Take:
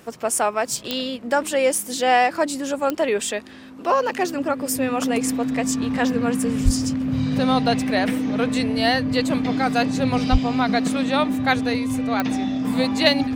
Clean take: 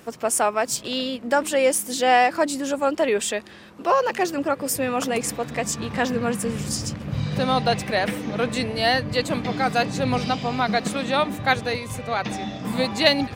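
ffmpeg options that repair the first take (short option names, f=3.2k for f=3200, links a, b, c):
-filter_complex "[0:a]adeclick=t=4,bandreject=f=260:w=30,asplit=3[a][b][c];[a]afade=t=out:st=6.64:d=0.02[d];[b]highpass=f=140:w=0.5412,highpass=f=140:w=1.3066,afade=t=in:st=6.64:d=0.02,afade=t=out:st=6.76:d=0.02[e];[c]afade=t=in:st=6.76:d=0.02[f];[d][e][f]amix=inputs=3:normalize=0,asplit=3[g][h][i];[g]afade=t=out:st=10.31:d=0.02[j];[h]highpass=f=140:w=0.5412,highpass=f=140:w=1.3066,afade=t=in:st=10.31:d=0.02,afade=t=out:st=10.43:d=0.02[k];[i]afade=t=in:st=10.43:d=0.02[l];[j][k][l]amix=inputs=3:normalize=0"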